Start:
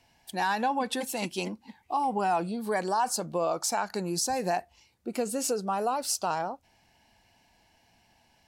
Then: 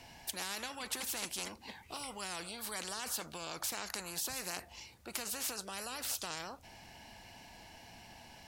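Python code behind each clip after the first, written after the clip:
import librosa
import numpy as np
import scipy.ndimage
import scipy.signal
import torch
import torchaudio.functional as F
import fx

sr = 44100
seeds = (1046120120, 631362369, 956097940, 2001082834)

y = fx.spectral_comp(x, sr, ratio=4.0)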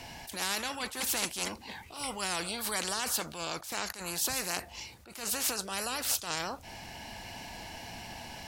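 y = fx.rider(x, sr, range_db=3, speed_s=2.0)
y = fx.attack_slew(y, sr, db_per_s=110.0)
y = y * librosa.db_to_amplitude(7.5)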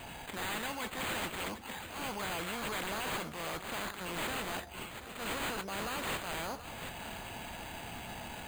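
y = np.repeat(x[::8], 8)[:len(x)]
y = y + 10.0 ** (-15.5 / 20.0) * np.pad(y, (int(731 * sr / 1000.0), 0))[:len(y)]
y = np.clip(10.0 ** (33.5 / 20.0) * y, -1.0, 1.0) / 10.0 ** (33.5 / 20.0)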